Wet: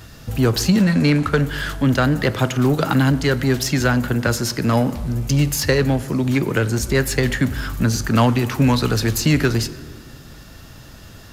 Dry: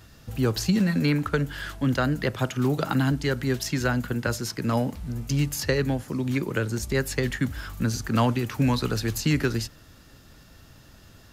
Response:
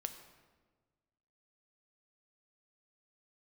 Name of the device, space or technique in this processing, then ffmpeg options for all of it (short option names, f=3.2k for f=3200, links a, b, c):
saturated reverb return: -filter_complex "[0:a]asettb=1/sr,asplit=3[a][b][c];[a]atrim=end=0.834[d];[b]atrim=start=0.83:end=1.27,asetpts=PTS-STARTPTS,afade=t=in:d=0.004:c=qsin,afade=t=out:st=0.436:d=0.004:c=qsin,lowpass=f=11k:w=0.5412,lowpass=f=11k:w=1.3066[e];[c]atrim=start=1.266[f];[d][e]acrossfade=d=0.004:c1=hsin:c2=qsin[g];[g][f]acrossfade=d=0.004:c1=qsin:c2=hsin,asplit=2[h][i];[1:a]atrim=start_sample=2205[j];[i][j]afir=irnorm=-1:irlink=0,asoftclip=type=tanh:threshold=-30dB,volume=1dB[k];[h][k]amix=inputs=2:normalize=0,volume=4.5dB"